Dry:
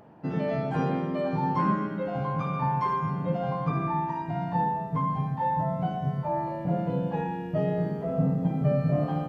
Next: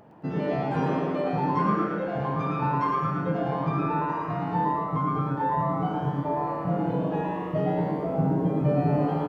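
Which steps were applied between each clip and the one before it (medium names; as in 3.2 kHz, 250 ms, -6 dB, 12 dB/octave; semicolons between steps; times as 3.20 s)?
frequency-shifting echo 112 ms, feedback 46%, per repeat +140 Hz, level -5 dB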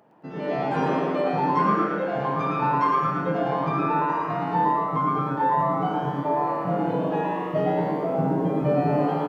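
high-pass 120 Hz; bass shelf 210 Hz -8.5 dB; level rider gain up to 9 dB; trim -4 dB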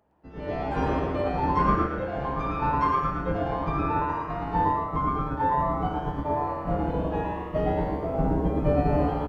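octave divider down 2 oct, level 0 dB; upward expansion 1.5:1, over -38 dBFS; trim -1 dB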